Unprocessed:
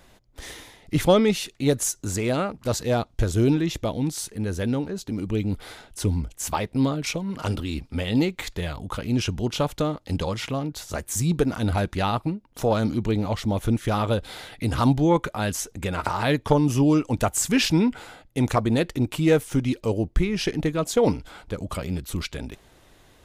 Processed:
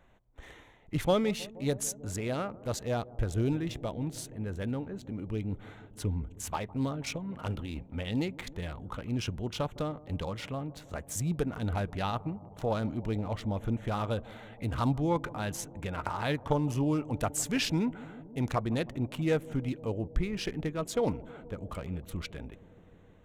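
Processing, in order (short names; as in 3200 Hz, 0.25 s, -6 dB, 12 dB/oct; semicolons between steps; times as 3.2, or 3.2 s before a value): Wiener smoothing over 9 samples; bell 320 Hz -3 dB 1.2 oct; analogue delay 0.158 s, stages 1024, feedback 83%, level -20 dB; gain -7.5 dB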